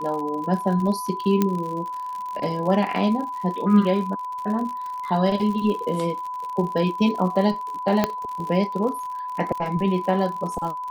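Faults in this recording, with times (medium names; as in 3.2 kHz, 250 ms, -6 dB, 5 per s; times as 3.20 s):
crackle 64 per s -30 dBFS
whine 1 kHz -28 dBFS
1.42 s: pop -7 dBFS
8.04 s: pop -6 dBFS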